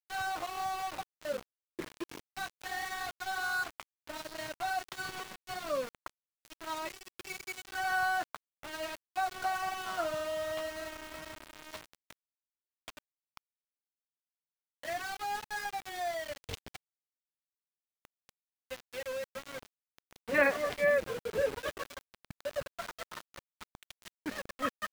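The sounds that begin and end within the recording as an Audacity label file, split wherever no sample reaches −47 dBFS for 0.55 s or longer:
12.880000	13.370000	sound
14.830000	16.760000	sound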